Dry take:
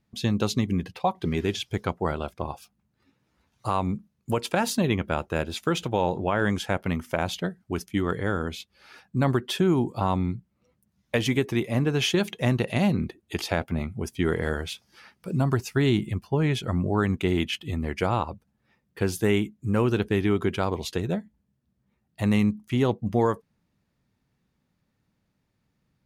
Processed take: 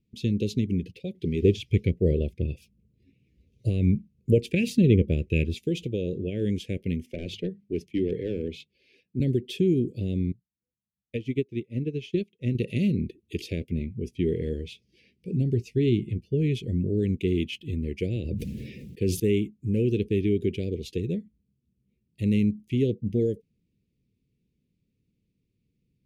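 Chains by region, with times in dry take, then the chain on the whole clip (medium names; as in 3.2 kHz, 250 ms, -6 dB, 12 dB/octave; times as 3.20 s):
1.42–5.59 s: bass shelf 200 Hz +11.5 dB + sweeping bell 1.4 Hz 470–2600 Hz +12 dB
7.06–9.20 s: hum notches 50/100/150/200 Hz + overdrive pedal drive 16 dB, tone 1.2 kHz, clips at -11 dBFS + three bands expanded up and down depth 40%
10.32–12.55 s: treble shelf 6.6 kHz -11 dB + upward expansion 2.5:1, over -35 dBFS
13.79–16.27 s: treble shelf 7.6 kHz -11.5 dB + doubling 17 ms -13.5 dB
18.16–19.20 s: high-pass 61 Hz + decay stretcher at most 25 dB/s
whole clip: elliptic band-stop 450–2400 Hz, stop band 50 dB; treble shelf 3.1 kHz -11 dB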